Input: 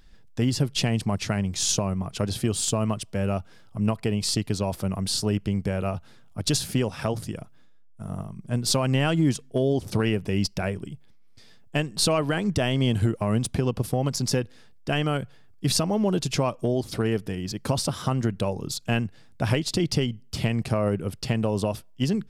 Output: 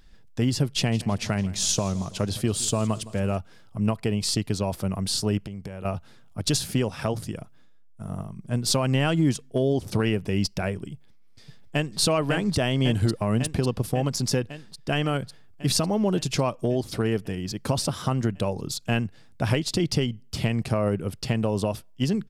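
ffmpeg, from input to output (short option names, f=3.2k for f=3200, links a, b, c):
-filter_complex "[0:a]asettb=1/sr,asplit=3[a][b][c];[a]atrim=end=0.704[d];[b]atrim=start=0.7:end=3.39,asetpts=PTS-STARTPTS,afade=t=in:d=0.004:c=qsin,afade=t=out:st=2.686:d=0.004:c=qsin,aecho=1:1:165|330|495|660:0.112|0.0583|0.0303|0.0158,atrim=end_sample=118629[e];[c]atrim=start=3.386[f];[d][e]acrossfade=d=0.004:c1=hsin:c2=qsin[g];[g][f]acrossfade=d=0.004:c1=qsin:c2=hsin,asettb=1/sr,asplit=3[h][i][j];[h]atrim=end=5.454[k];[i]atrim=start=5.45:end=5.85,asetpts=PTS-STARTPTS,afade=t=in:d=0.004:c=qsin,afade=t=out:st=0.396:d=0.004:c=qsin,acompressor=threshold=-32dB:ratio=6:attack=3.2:release=140:knee=1:detection=peak[l];[j]atrim=start=5.846[m];[k][l]acrossfade=d=0.004:c1=hsin:c2=qsin[n];[n][m]acrossfade=d=0.004:c1=qsin:c2=hsin,asplit=2[o][p];[p]afade=t=in:st=10.93:d=0.01,afade=t=out:st=12:d=0.01,aecho=0:1:550|1100|1650|2200|2750|3300|3850|4400|4950|5500|6050|6600:0.595662|0.446747|0.33506|0.251295|0.188471|0.141353|0.106015|0.0795113|0.0596335|0.0447251|0.0335438|0.0251579[q];[o][q]amix=inputs=2:normalize=0"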